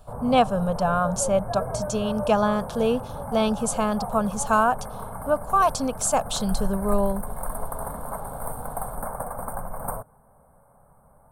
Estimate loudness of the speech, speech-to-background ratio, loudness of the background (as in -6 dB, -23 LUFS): -24.5 LUFS, 9.5 dB, -34.0 LUFS